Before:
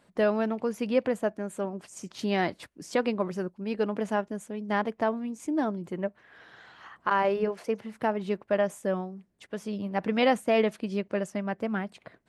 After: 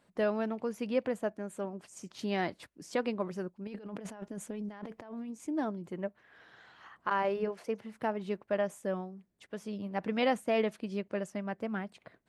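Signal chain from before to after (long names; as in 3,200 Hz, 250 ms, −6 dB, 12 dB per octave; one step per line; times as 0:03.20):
0:03.67–0:05.30: compressor whose output falls as the input rises −37 dBFS, ratio −1
level −5.5 dB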